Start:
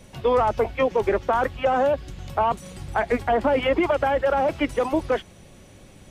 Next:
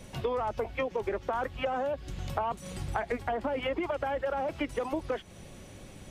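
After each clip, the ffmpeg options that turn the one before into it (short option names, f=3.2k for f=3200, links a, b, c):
-af "acompressor=threshold=-29dB:ratio=6"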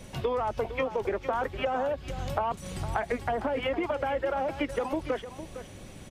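-af "aecho=1:1:458:0.251,volume=2dB"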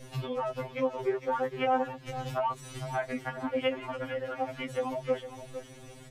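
-af "afftfilt=real='re*2.45*eq(mod(b,6),0)':imag='im*2.45*eq(mod(b,6),0)':win_size=2048:overlap=0.75"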